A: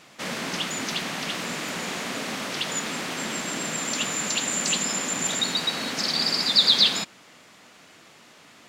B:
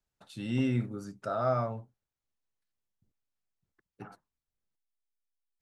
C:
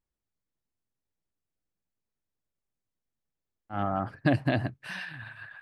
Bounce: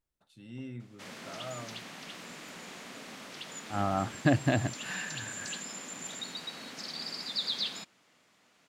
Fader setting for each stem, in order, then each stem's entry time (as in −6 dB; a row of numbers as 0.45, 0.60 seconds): −15.0, −13.5, −0.5 decibels; 0.80, 0.00, 0.00 seconds